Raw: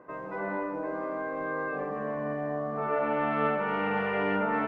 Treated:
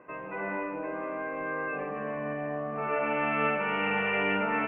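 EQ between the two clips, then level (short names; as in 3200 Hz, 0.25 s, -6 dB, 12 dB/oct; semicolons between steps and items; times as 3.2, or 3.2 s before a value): synth low-pass 2600 Hz, resonance Q 7.7; air absorption 190 m; -1.5 dB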